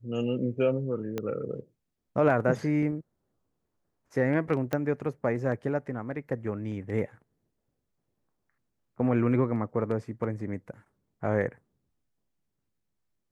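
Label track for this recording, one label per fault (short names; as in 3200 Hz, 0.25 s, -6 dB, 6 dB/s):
1.180000	1.180000	pop -18 dBFS
4.730000	4.730000	pop -16 dBFS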